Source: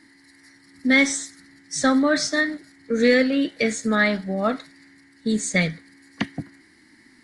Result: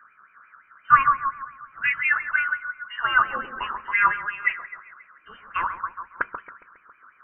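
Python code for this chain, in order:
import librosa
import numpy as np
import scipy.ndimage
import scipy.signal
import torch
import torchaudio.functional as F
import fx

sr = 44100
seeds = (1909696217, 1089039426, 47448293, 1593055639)

p1 = fx.peak_eq(x, sr, hz=270.0, db=-11.5, octaves=0.21)
p2 = p1 + fx.echo_wet_highpass(p1, sr, ms=137, feedback_pct=52, hz=1600.0, wet_db=-7.0, dry=0)
p3 = fx.filter_lfo_highpass(p2, sr, shape='sine', hz=5.7, low_hz=880.0, high_hz=2200.0, q=6.4)
p4 = fx.freq_invert(p3, sr, carrier_hz=3300)
y = p4 * 10.0 ** (-5.5 / 20.0)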